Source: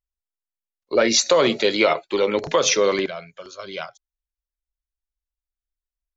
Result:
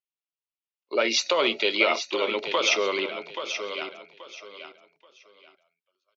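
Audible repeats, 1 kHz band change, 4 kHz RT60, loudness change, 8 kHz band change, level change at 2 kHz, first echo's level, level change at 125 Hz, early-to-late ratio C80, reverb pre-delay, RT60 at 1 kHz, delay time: 3, -4.0 dB, no reverb, -5.5 dB, no reading, 0.0 dB, -9.0 dB, under -15 dB, no reverb, no reverb, no reverb, 830 ms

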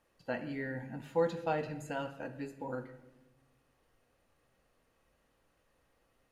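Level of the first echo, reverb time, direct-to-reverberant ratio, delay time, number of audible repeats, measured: no echo, 1.0 s, 7.5 dB, no echo, no echo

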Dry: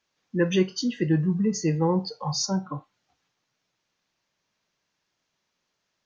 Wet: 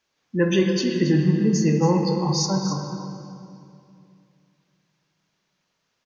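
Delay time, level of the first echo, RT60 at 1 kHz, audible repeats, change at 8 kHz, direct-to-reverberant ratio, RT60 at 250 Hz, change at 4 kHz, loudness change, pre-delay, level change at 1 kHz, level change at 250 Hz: 275 ms, -10.5 dB, 2.4 s, 1, no reading, 1.5 dB, 2.9 s, +3.5 dB, +4.0 dB, 18 ms, +4.5 dB, +4.5 dB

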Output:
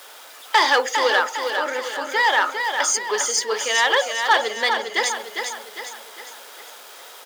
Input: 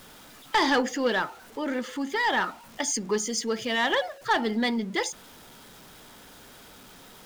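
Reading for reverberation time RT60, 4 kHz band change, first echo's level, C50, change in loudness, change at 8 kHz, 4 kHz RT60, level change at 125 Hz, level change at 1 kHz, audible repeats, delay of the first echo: no reverb, +8.5 dB, -6.0 dB, no reverb, +7.0 dB, +9.0 dB, no reverb, under -20 dB, +8.0 dB, 5, 404 ms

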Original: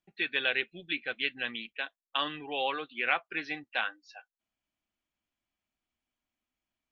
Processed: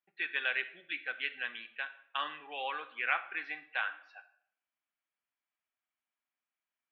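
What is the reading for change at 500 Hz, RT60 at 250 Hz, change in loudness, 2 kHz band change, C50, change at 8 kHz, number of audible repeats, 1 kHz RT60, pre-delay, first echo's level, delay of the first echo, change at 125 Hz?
-9.5 dB, 0.70 s, -3.5 dB, -2.0 dB, 14.0 dB, no reading, no echo, 0.70 s, 26 ms, no echo, no echo, under -15 dB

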